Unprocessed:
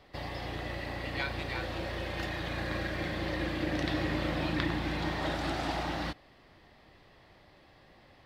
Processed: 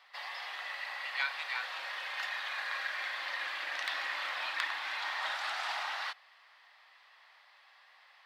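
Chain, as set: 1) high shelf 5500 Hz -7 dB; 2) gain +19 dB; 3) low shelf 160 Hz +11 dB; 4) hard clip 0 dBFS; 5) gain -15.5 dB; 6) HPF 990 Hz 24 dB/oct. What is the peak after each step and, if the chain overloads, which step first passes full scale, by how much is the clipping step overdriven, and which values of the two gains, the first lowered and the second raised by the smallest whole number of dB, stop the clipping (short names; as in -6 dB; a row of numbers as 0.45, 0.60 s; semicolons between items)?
-14.5, +4.5, +5.5, 0.0, -15.5, -15.0 dBFS; step 2, 5.5 dB; step 2 +13 dB, step 5 -9.5 dB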